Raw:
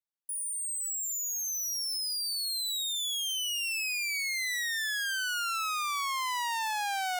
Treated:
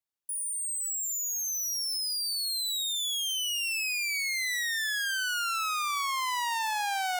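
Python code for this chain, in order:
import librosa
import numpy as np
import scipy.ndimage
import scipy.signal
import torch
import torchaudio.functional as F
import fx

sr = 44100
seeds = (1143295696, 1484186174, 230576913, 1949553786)

y = fx.echo_tape(x, sr, ms=66, feedback_pct=83, wet_db=-16, lp_hz=1800.0, drive_db=22.0, wow_cents=10)
y = y * librosa.db_to_amplitude(1.5)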